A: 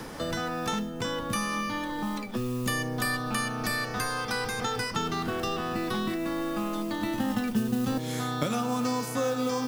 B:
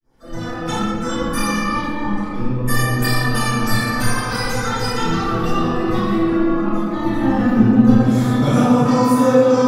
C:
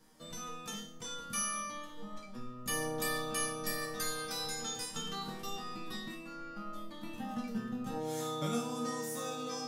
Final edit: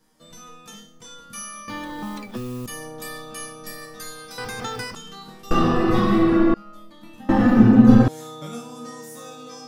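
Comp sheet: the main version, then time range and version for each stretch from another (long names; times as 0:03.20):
C
0:01.68–0:02.66: punch in from A
0:04.38–0:04.95: punch in from A
0:05.51–0:06.54: punch in from B
0:07.29–0:08.08: punch in from B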